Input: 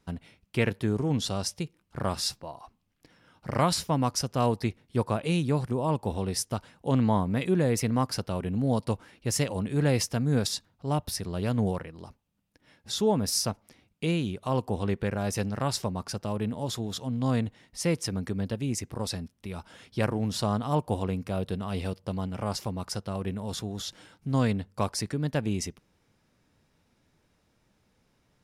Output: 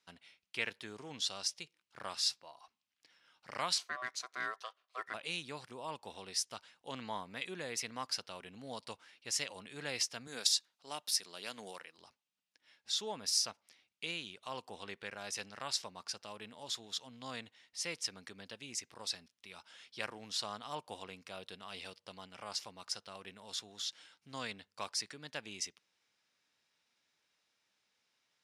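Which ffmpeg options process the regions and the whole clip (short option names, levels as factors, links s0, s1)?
-filter_complex "[0:a]asettb=1/sr,asplit=3[s0][s1][s2];[s0]atrim=end=3.784[s3];[s1]atrim=start=3.78:end=5.14,asetpts=PTS-STARTPTS,afade=t=in:d=0.004:c=qsin,afade=t=out:st=1.356:d=0.004:c=qsin,highpass=f=660:p=1,tiltshelf=f=1200:g=6.5,aeval=exprs='val(0)*sin(2*PI*880*n/s)':c=same[s4];[s2]atrim=start=5.136[s5];[s3][s4]acrossfade=d=0.004:c1=hsin:c2=qsin[s6];[s6][s5]acrossfade=d=0.004:c1=qsin:c2=hsin,asettb=1/sr,asplit=3[s7][s8][s9];[s7]atrim=end=10.274[s10];[s8]atrim=start=10.27:end=11.98,asetpts=PTS-STARTPTS,afade=t=in:d=0.004:c=qsin,afade=t=out:st=1.706:d=0.004:c=qsin,highpass=210,aemphasis=mode=production:type=cd[s11];[s9]atrim=start=11.976[s12];[s10][s11]acrossfade=d=0.004:c1=hsin:c2=qsin[s13];[s13][s12]acrossfade=d=0.004:c1=qsin:c2=hsin,lowpass=4200,aderivative,volume=2"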